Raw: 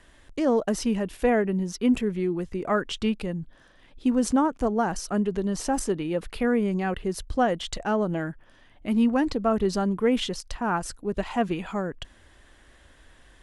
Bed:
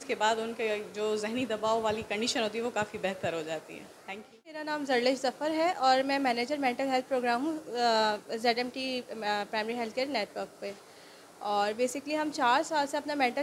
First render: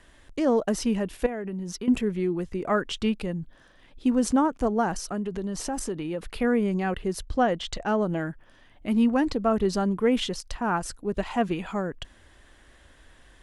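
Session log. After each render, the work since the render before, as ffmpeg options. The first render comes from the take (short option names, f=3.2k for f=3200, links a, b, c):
-filter_complex "[0:a]asettb=1/sr,asplit=3[a][b][c];[a]atrim=end=1.264[d];[b]atrim=start=1.26:end=1.88,asetpts=PTS-STARTPTS,afade=t=in:d=0.004:c=qsin,afade=t=out:st=0.616:d=0.004:c=qsin,acompressor=threshold=-29dB:ratio=8:attack=3.2:release=140:knee=1:detection=peak[e];[c]atrim=start=1.876[f];[d][e]acrossfade=d=0.004:c1=hsin:c2=qsin[g];[g][f]acrossfade=d=0.004:c1=qsin:c2=hsin,asettb=1/sr,asplit=3[h][i][j];[h]atrim=end=4.934[k];[i]atrim=start=4.93:end=6.34,asetpts=PTS-STARTPTS,afade=t=in:d=0.004:c=qsin,afade=t=out:st=1.406:d=0.004:c=qsin,acompressor=threshold=-28dB:ratio=2.5:attack=3.2:release=140:knee=1:detection=peak[l];[j]atrim=start=6.336[m];[k][l]acrossfade=d=0.004:c1=hsin:c2=qsin[n];[n][m]acrossfade=d=0.004:c1=qsin:c2=hsin,asettb=1/sr,asplit=3[o][p][q];[o]atrim=end=7.224[r];[p]atrim=start=7.22:end=7.88,asetpts=PTS-STARTPTS,afade=t=in:d=0.004:c=qsin,afade=t=out:st=0.656:d=0.004:c=qsin,lowpass=7k[s];[q]atrim=start=7.876[t];[r][s]acrossfade=d=0.004:c1=hsin:c2=qsin[u];[u][t]acrossfade=d=0.004:c1=qsin:c2=hsin"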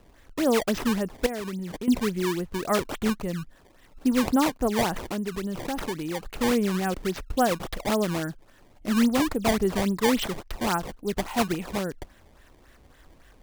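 -af "acrusher=samples=19:mix=1:aa=0.000001:lfo=1:lforange=30.4:lforate=3.6"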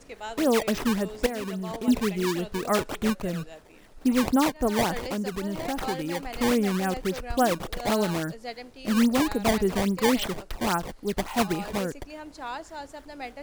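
-filter_complex "[1:a]volume=-10dB[a];[0:a][a]amix=inputs=2:normalize=0"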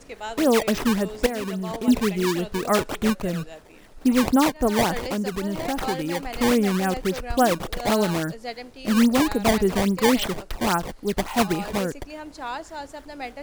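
-af "volume=3.5dB"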